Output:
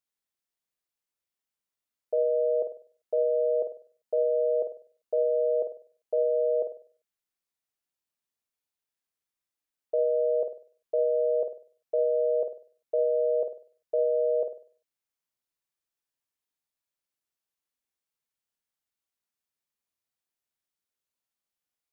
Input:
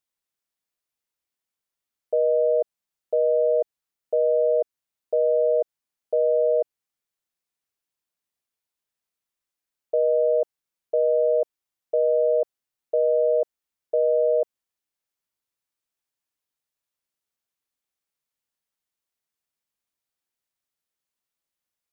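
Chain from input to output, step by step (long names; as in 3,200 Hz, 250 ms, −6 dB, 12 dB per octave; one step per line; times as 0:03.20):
flutter between parallel walls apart 8.5 metres, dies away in 0.44 s
level −4.5 dB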